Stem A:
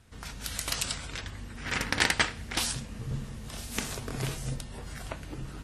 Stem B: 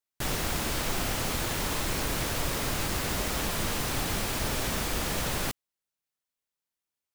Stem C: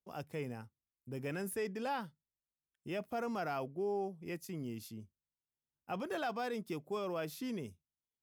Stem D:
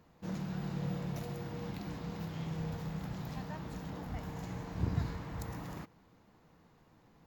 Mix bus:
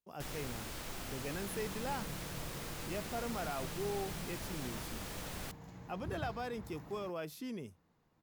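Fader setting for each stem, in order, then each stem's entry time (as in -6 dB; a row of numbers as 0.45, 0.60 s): off, -14.0 dB, -2.5 dB, -10.0 dB; off, 0.00 s, 0.00 s, 1.25 s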